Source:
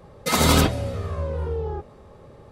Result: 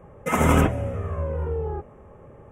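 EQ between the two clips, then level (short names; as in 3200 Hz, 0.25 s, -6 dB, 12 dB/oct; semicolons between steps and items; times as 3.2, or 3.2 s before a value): Butterworth band-stop 4300 Hz, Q 1.1; high shelf 5900 Hz -11.5 dB; 0.0 dB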